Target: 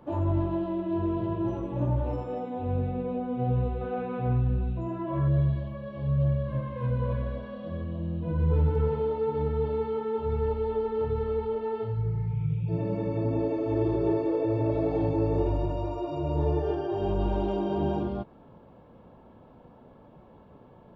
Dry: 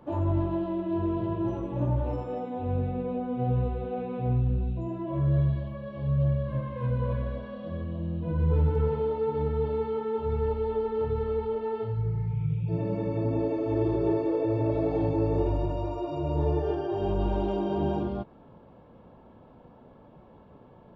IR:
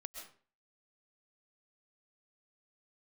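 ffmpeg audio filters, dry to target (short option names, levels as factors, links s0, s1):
-filter_complex "[0:a]asettb=1/sr,asplit=3[s0][s1][s2];[s0]atrim=end=3.814[s3];[s1]atrim=start=3.81:end=5.28,asetpts=PTS-STARTPTS,afade=t=in:d=0.004:c=qsin,afade=t=out:st=1.466:d=0.004:c=qsin,equalizer=f=1400:t=o:w=0.97:g=9.5[s4];[s2]atrim=start=5.276[s5];[s3][s4]acrossfade=d=0.004:c1=hsin:c2=qsin[s6];[s6][s5]acrossfade=d=0.004:c1=qsin:c2=hsin"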